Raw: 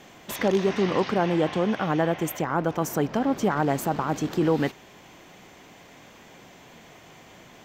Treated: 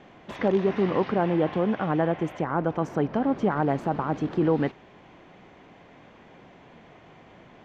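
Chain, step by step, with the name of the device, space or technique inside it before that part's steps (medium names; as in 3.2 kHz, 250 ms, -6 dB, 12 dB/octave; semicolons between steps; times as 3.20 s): phone in a pocket (low-pass 3.7 kHz 12 dB/octave; treble shelf 2.2 kHz -8.5 dB)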